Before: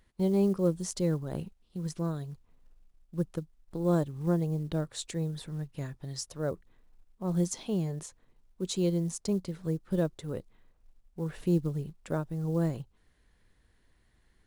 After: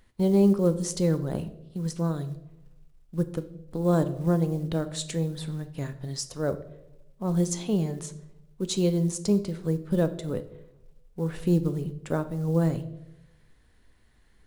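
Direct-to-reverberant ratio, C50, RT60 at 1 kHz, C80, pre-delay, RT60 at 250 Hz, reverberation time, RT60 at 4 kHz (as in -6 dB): 10.0 dB, 14.5 dB, 0.65 s, 17.5 dB, 4 ms, 1.0 s, 0.85 s, 0.60 s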